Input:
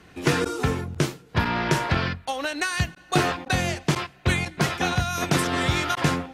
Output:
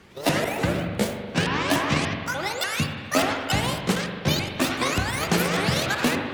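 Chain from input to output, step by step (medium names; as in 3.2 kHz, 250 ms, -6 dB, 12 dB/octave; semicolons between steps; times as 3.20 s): sawtooth pitch modulation +12 st, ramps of 293 ms; spring tank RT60 2 s, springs 40/46 ms, chirp 35 ms, DRR 4.5 dB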